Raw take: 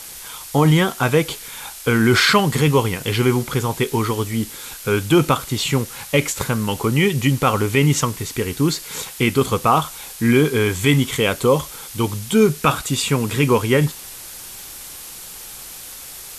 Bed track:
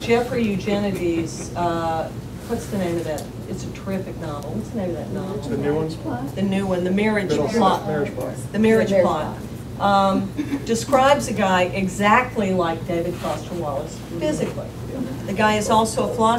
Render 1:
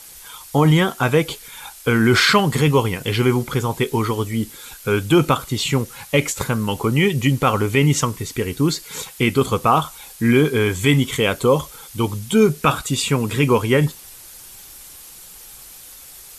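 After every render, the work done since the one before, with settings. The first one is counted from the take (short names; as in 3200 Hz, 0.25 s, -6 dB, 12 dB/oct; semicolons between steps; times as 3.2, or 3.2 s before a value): denoiser 7 dB, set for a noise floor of -36 dBFS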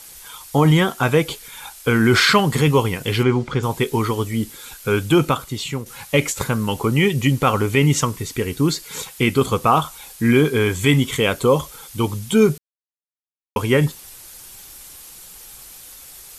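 3.23–3.63 air absorption 110 m; 5.06–5.86 fade out, to -9 dB; 12.58–13.56 mute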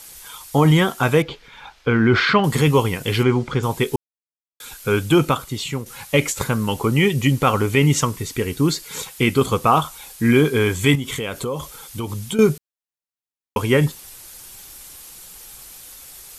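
1.22–2.44 air absorption 230 m; 3.96–4.6 mute; 10.95–12.39 compressor 4:1, threshold -23 dBFS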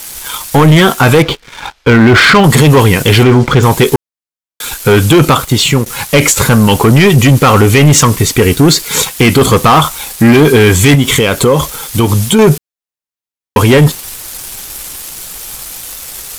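sample leveller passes 3; maximiser +7 dB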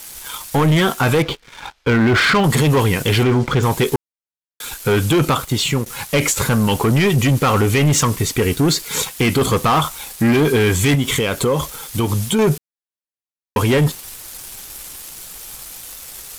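gain -9 dB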